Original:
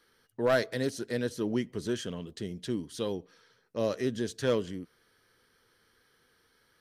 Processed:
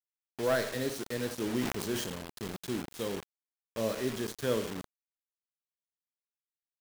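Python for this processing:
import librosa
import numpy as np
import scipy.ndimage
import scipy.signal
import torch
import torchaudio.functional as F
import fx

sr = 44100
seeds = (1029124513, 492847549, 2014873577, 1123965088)

y = fx.rev_schroeder(x, sr, rt60_s=0.62, comb_ms=28, drr_db=7.5)
y = fx.quant_dither(y, sr, seeds[0], bits=6, dither='none')
y = fx.sustainer(y, sr, db_per_s=49.0, at=(1.38, 2.76))
y = F.gain(torch.from_numpy(y), -3.5).numpy()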